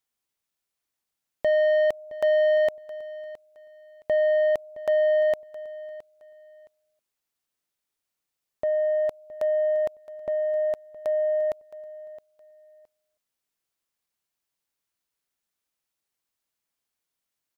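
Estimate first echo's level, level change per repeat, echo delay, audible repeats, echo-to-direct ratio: -17.5 dB, -12.0 dB, 667 ms, 2, -17.5 dB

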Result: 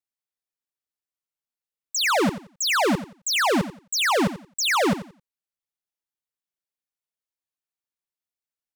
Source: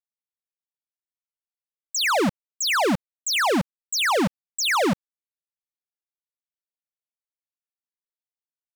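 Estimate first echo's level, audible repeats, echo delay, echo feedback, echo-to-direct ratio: -13.0 dB, 2, 88 ms, 23%, -13.0 dB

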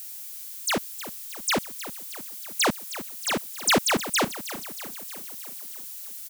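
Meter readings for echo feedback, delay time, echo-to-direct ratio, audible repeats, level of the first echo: 60%, 313 ms, -12.0 dB, 5, -14.0 dB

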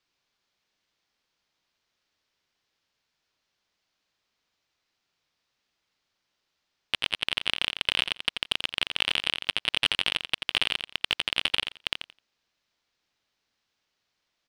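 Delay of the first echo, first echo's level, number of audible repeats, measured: 86 ms, -8.0 dB, 2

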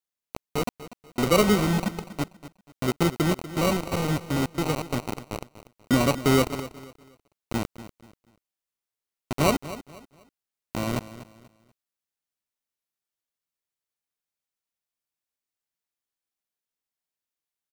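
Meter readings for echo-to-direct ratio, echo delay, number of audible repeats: -14.5 dB, 242 ms, 2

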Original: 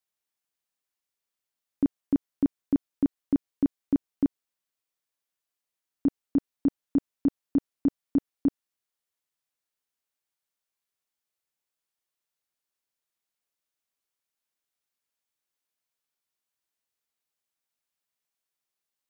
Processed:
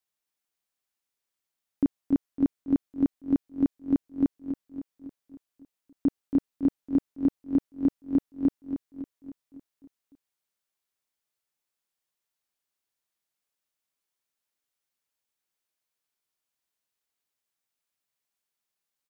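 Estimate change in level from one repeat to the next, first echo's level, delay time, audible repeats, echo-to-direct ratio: -5.0 dB, -9.0 dB, 278 ms, 6, -7.5 dB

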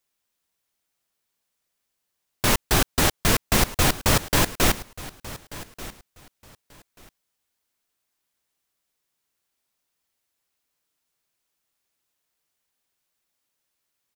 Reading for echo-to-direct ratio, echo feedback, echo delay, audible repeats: -17.5 dB, 20%, 1186 ms, 2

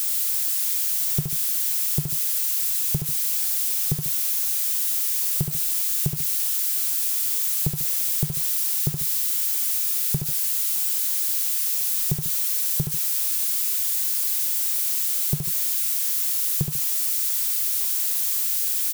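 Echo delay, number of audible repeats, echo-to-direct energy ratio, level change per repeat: 71 ms, 2, -6.0 dB, -8.0 dB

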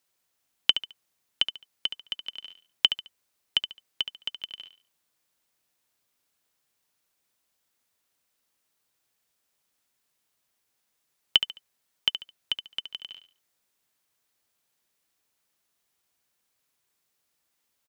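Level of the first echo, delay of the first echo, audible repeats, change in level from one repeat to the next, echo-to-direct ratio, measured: -10.0 dB, 71 ms, 3, -10.5 dB, -9.5 dB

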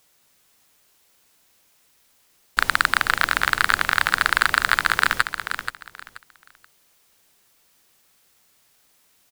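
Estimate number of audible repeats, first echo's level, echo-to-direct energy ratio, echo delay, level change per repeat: 3, -8.5 dB, -8.5 dB, 480 ms, -13.0 dB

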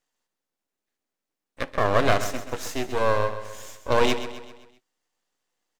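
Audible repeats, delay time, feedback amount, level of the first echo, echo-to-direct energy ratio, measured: 4, 130 ms, 48%, -11.5 dB, -10.5 dB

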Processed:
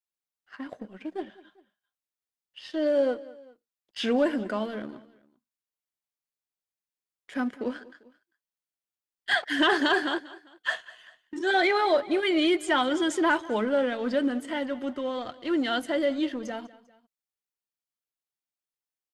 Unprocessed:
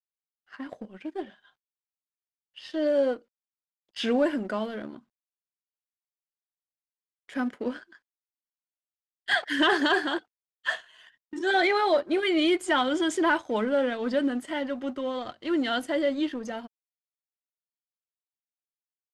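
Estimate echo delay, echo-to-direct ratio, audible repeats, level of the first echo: 198 ms, -18.5 dB, 2, -19.5 dB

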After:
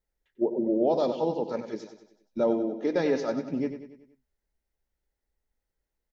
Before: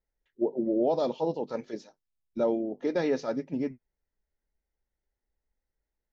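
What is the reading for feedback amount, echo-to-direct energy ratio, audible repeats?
50%, -9.0 dB, 5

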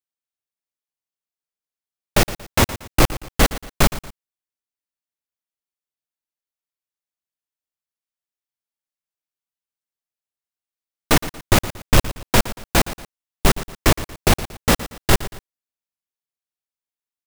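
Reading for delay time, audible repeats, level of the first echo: 116 ms, 2, -15.0 dB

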